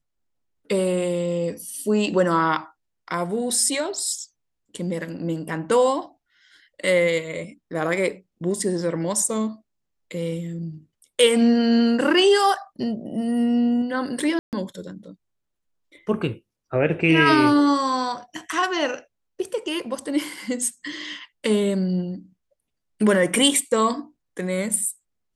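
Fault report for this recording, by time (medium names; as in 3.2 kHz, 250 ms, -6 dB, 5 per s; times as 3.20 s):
14.39–14.53 s: dropout 138 ms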